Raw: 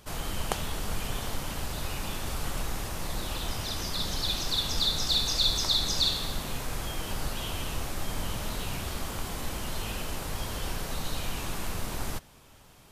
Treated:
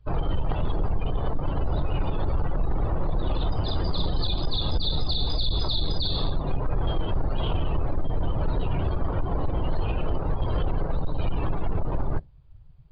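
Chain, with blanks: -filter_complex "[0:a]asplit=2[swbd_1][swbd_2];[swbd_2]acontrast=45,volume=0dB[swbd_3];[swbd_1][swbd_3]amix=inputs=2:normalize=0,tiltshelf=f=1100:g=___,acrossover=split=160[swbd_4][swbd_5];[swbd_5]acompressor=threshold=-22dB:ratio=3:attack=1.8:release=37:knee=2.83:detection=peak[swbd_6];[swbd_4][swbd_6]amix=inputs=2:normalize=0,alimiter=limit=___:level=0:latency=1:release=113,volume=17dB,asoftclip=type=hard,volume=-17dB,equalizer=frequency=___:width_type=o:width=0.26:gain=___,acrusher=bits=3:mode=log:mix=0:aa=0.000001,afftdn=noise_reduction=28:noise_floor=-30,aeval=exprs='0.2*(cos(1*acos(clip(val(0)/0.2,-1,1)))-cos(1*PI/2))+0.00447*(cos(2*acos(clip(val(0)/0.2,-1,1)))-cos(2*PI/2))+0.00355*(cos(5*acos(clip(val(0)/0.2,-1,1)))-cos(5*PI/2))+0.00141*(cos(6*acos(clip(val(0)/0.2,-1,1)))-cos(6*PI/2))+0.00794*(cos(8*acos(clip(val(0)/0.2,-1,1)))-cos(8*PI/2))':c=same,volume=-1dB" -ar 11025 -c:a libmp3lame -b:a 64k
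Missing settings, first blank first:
4.5, -12dB, 220, -12.5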